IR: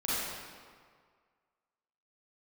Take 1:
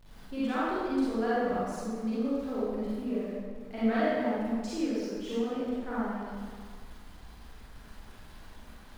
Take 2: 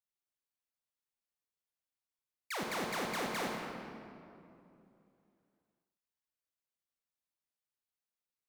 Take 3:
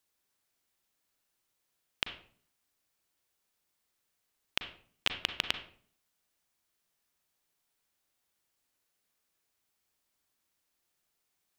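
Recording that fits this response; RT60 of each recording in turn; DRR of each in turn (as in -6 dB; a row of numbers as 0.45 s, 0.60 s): 1; 1.9 s, 2.7 s, 0.50 s; -10.0 dB, -0.5 dB, 7.0 dB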